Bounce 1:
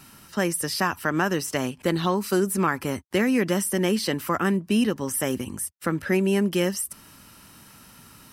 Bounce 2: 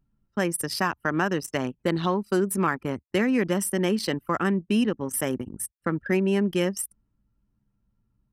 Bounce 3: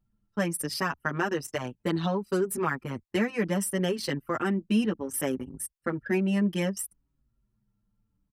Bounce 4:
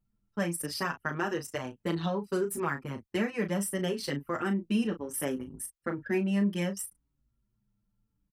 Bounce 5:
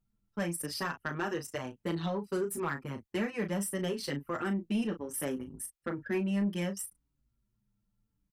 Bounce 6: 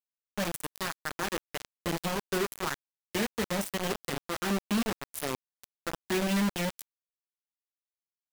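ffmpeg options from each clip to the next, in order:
-af "anlmdn=63.1,volume=0.891"
-filter_complex "[0:a]asplit=2[s0][s1];[s1]adelay=6.1,afreqshift=-0.65[s2];[s0][s2]amix=inputs=2:normalize=1"
-filter_complex "[0:a]asplit=2[s0][s1];[s1]adelay=35,volume=0.355[s2];[s0][s2]amix=inputs=2:normalize=0,volume=0.668"
-af "asoftclip=type=tanh:threshold=0.0841,volume=0.841"
-af "acrusher=bits=4:mix=0:aa=0.000001"

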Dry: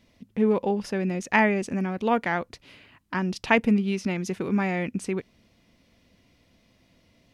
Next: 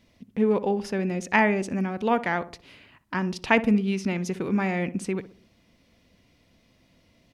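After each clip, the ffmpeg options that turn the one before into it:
-filter_complex "[0:a]asplit=2[s0][s1];[s1]adelay=62,lowpass=f=1100:p=1,volume=0.224,asplit=2[s2][s3];[s3]adelay=62,lowpass=f=1100:p=1,volume=0.45,asplit=2[s4][s5];[s5]adelay=62,lowpass=f=1100:p=1,volume=0.45,asplit=2[s6][s7];[s7]adelay=62,lowpass=f=1100:p=1,volume=0.45[s8];[s0][s2][s4][s6][s8]amix=inputs=5:normalize=0"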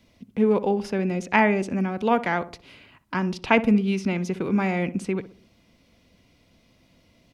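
-filter_complex "[0:a]bandreject=f=1800:w=13,acrossover=split=310|1100|4300[s0][s1][s2][s3];[s3]alimiter=level_in=4.47:limit=0.0631:level=0:latency=1:release=368,volume=0.224[s4];[s0][s1][s2][s4]amix=inputs=4:normalize=0,volume=1.26"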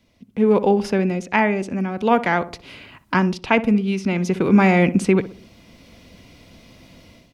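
-af "dynaudnorm=f=310:g=3:m=5.62,volume=0.794"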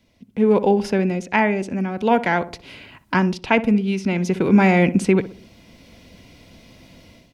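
-af "bandreject=f=1200:w=9.7"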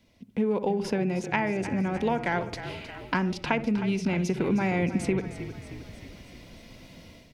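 -filter_complex "[0:a]acompressor=threshold=0.0891:ratio=6,asplit=2[s0][s1];[s1]asplit=7[s2][s3][s4][s5][s6][s7][s8];[s2]adelay=312,afreqshift=-34,volume=0.251[s9];[s3]adelay=624,afreqshift=-68,volume=0.151[s10];[s4]adelay=936,afreqshift=-102,volume=0.0902[s11];[s5]adelay=1248,afreqshift=-136,volume=0.0543[s12];[s6]adelay=1560,afreqshift=-170,volume=0.0327[s13];[s7]adelay=1872,afreqshift=-204,volume=0.0195[s14];[s8]adelay=2184,afreqshift=-238,volume=0.0117[s15];[s9][s10][s11][s12][s13][s14][s15]amix=inputs=7:normalize=0[s16];[s0][s16]amix=inputs=2:normalize=0,volume=0.794"

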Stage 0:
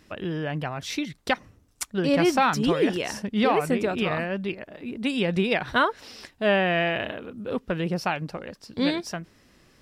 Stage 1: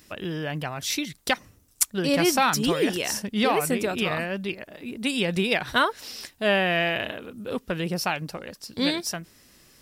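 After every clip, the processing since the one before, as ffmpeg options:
-af "aemphasis=mode=production:type=75kf,volume=0.841"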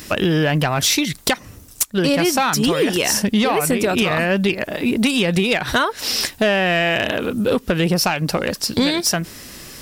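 -af "acompressor=threshold=0.0282:ratio=16,aeval=exprs='0.158*sin(PI/2*2.51*val(0)/0.158)':c=same,volume=2.11"

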